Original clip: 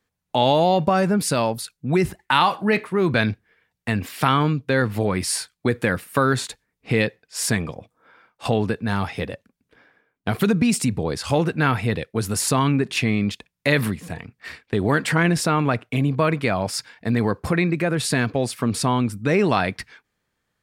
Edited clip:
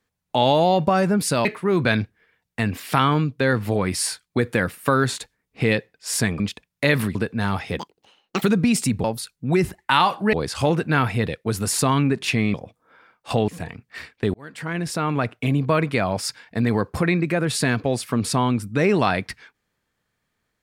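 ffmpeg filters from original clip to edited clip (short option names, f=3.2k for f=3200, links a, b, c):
-filter_complex "[0:a]asplit=11[a][b][c][d][e][f][g][h][i][j][k];[a]atrim=end=1.452[l];[b]atrim=start=2.738:end=7.692[m];[c]atrim=start=13.228:end=13.982[n];[d]atrim=start=8.628:end=9.274[o];[e]atrim=start=9.27:end=10.4,asetpts=PTS-STARTPTS,asetrate=78939,aresample=44100[p];[f]atrim=start=10.396:end=11.022[q];[g]atrim=start=1.448:end=2.742[r];[h]atrim=start=11.018:end=13.232[s];[i]atrim=start=7.688:end=8.632[t];[j]atrim=start=13.978:end=14.84,asetpts=PTS-STARTPTS,afade=t=out:st=0.858:d=0.004:c=hsin[u];[k]atrim=start=14.84,asetpts=PTS-STARTPTS,afade=t=in:d=1.06[v];[l][m]acrossfade=d=0.004:c1=hsin:c2=hsin[w];[w][n]acrossfade=d=0.004:c1=hsin:c2=hsin[x];[x][o]acrossfade=d=0.004:c1=hsin:c2=hsin[y];[y][p]acrossfade=d=0.004:c1=hsin:c2=hsin[z];[z][q]acrossfade=d=0.004:c1=hsin:c2=hsin[aa];[aa][r]acrossfade=d=0.004:c1=hsin:c2=hsin[ab];[ab][s]acrossfade=d=0.004:c1=hsin:c2=hsin[ac];[ac][t]acrossfade=d=0.004:c1=hsin:c2=hsin[ad];[u][v]concat=n=2:v=0:a=1[ae];[ad][ae]acrossfade=d=0.004:c1=hsin:c2=hsin"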